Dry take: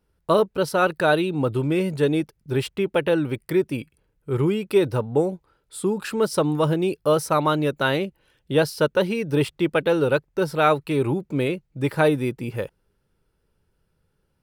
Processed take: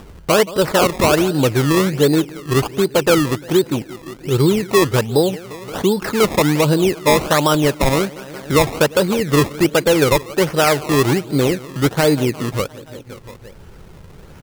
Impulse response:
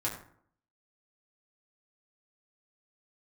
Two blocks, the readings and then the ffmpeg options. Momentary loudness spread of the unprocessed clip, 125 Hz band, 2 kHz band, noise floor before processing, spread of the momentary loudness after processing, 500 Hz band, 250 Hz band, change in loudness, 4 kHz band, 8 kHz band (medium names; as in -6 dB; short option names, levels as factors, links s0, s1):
7 LU, +7.0 dB, +6.0 dB, -71 dBFS, 8 LU, +5.5 dB, +6.5 dB, +6.5 dB, +10.5 dB, +14.0 dB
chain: -af "aecho=1:1:174|348|522|696|870:0.1|0.059|0.0348|0.0205|0.0121,acompressor=mode=upward:threshold=0.0447:ratio=2.5,acrusher=samples=20:mix=1:aa=0.000001:lfo=1:lforange=20:lforate=1.3,alimiter=level_in=3.76:limit=0.891:release=50:level=0:latency=1,volume=0.596"